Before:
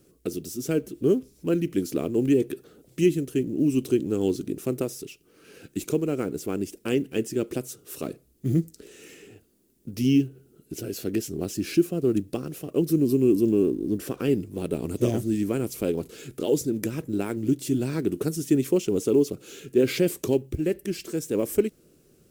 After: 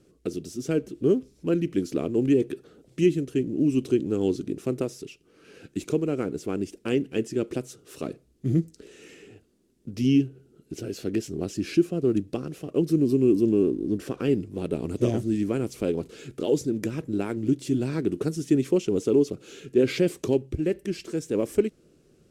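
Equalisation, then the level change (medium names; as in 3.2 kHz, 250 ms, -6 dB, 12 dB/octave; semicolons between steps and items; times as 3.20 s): distance through air 57 m; 0.0 dB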